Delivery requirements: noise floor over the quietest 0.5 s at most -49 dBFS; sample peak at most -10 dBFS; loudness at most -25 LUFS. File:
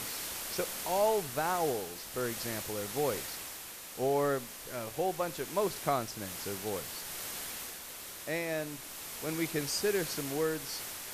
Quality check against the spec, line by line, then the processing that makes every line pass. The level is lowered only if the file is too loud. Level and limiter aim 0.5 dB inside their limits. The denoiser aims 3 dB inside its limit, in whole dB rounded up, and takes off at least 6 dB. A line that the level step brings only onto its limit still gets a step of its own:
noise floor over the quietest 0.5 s -45 dBFS: fail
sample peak -17.0 dBFS: pass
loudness -34.5 LUFS: pass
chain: noise reduction 7 dB, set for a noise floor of -45 dBFS

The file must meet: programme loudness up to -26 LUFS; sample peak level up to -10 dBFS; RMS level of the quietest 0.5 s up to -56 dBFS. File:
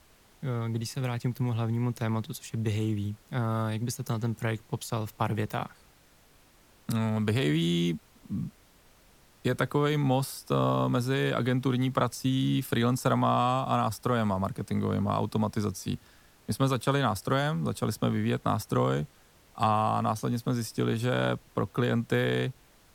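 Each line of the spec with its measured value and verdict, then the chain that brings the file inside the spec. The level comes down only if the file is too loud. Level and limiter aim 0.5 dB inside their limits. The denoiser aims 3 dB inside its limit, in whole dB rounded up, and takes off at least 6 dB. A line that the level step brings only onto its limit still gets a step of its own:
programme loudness -29.0 LUFS: pass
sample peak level -12.0 dBFS: pass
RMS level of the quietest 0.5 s -60 dBFS: pass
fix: none needed

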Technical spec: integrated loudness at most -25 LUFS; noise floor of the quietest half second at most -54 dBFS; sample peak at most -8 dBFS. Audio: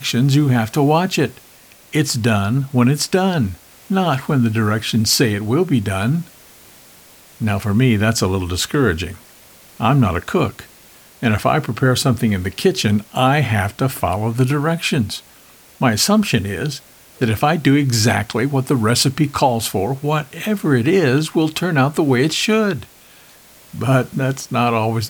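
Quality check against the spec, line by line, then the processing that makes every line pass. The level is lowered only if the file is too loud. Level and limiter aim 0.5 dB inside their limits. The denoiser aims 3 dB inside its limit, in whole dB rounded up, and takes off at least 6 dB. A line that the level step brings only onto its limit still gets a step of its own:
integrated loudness -17.5 LUFS: fail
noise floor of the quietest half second -46 dBFS: fail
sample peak -3.5 dBFS: fail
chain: noise reduction 6 dB, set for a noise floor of -46 dBFS; trim -8 dB

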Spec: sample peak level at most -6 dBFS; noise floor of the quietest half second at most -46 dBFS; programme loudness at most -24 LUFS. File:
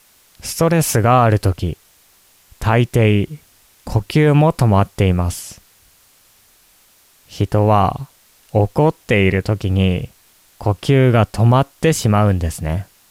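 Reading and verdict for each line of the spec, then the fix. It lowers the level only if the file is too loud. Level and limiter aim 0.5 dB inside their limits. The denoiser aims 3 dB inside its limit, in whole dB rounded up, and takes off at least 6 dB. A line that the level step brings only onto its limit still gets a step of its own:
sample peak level -3.5 dBFS: fail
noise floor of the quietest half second -53 dBFS: pass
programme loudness -16.5 LUFS: fail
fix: trim -8 dB

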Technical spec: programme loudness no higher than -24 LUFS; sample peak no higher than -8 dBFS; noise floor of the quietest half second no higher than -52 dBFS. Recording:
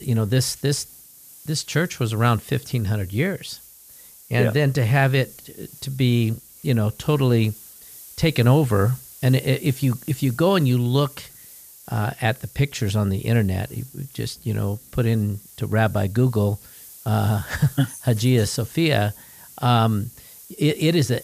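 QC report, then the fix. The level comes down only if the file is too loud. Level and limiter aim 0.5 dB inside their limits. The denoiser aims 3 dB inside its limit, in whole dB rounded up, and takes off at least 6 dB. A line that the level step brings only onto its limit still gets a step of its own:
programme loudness -22.0 LUFS: fail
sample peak -5.5 dBFS: fail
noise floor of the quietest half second -46 dBFS: fail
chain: noise reduction 7 dB, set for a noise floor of -46 dBFS; trim -2.5 dB; peak limiter -8.5 dBFS

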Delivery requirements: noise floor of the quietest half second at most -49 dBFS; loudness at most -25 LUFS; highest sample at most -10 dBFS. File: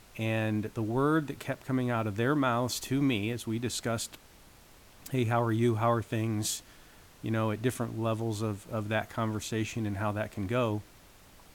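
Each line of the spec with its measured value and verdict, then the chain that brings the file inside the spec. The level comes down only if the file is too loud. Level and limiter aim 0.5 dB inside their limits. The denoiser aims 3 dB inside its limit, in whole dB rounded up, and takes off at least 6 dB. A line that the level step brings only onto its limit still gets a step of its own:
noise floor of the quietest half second -56 dBFS: pass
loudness -31.0 LUFS: pass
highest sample -15.0 dBFS: pass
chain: none needed

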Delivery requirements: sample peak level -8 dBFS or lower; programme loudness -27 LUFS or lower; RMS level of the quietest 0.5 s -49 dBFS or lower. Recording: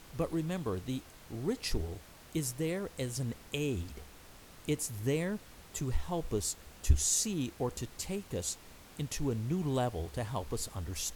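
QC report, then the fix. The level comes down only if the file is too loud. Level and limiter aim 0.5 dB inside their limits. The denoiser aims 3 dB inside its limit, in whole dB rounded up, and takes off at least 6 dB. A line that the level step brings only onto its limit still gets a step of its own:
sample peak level -12.0 dBFS: pass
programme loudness -35.5 LUFS: pass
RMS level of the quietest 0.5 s -54 dBFS: pass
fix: none needed

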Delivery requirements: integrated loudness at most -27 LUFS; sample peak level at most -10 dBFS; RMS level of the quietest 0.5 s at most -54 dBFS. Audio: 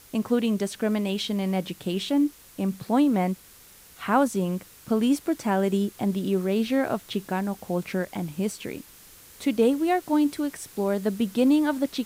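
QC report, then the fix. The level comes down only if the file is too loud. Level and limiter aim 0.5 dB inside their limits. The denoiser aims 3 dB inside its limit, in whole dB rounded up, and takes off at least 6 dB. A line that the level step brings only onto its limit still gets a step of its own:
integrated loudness -25.5 LUFS: fail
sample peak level -8.5 dBFS: fail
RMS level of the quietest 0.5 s -51 dBFS: fail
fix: noise reduction 6 dB, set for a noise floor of -51 dBFS; trim -2 dB

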